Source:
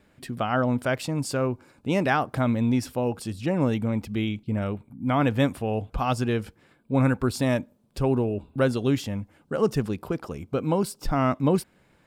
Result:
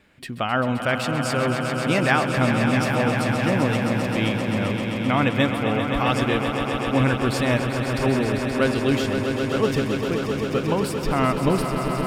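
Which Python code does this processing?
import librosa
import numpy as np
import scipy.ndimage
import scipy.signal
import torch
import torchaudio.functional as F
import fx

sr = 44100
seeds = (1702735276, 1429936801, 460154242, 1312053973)

p1 = fx.peak_eq(x, sr, hz=2500.0, db=7.5, octaves=1.7)
y = p1 + fx.echo_swell(p1, sr, ms=131, loudest=5, wet_db=-9.0, dry=0)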